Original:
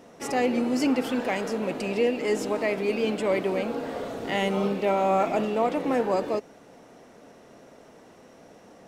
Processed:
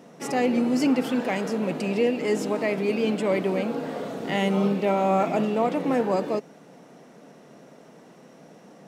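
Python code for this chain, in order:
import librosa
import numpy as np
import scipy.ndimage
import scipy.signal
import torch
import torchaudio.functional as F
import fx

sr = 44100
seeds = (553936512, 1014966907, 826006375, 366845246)

y = fx.low_shelf_res(x, sr, hz=110.0, db=-11.5, q=3.0)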